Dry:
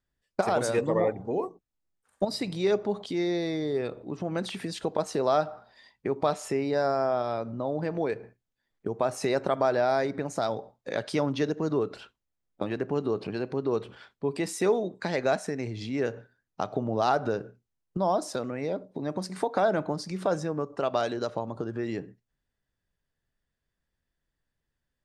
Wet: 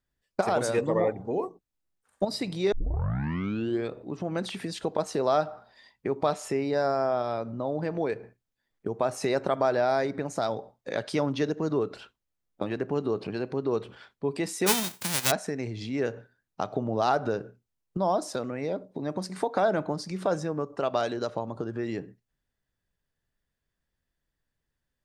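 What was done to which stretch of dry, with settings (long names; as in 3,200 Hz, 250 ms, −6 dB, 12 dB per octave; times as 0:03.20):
0:02.72: tape start 1.19 s
0:14.66–0:15.30: spectral envelope flattened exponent 0.1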